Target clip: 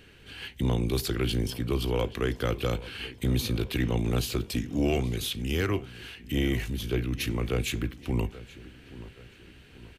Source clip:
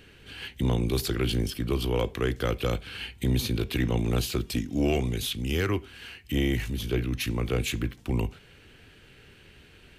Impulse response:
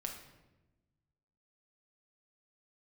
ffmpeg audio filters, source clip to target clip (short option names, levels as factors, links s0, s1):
-filter_complex "[0:a]asplit=2[s0][s1];[s1]adelay=828,lowpass=f=3500:p=1,volume=0.141,asplit=2[s2][s3];[s3]adelay=828,lowpass=f=3500:p=1,volume=0.49,asplit=2[s4][s5];[s5]adelay=828,lowpass=f=3500:p=1,volume=0.49,asplit=2[s6][s7];[s7]adelay=828,lowpass=f=3500:p=1,volume=0.49[s8];[s0][s2][s4][s6][s8]amix=inputs=5:normalize=0,volume=0.891"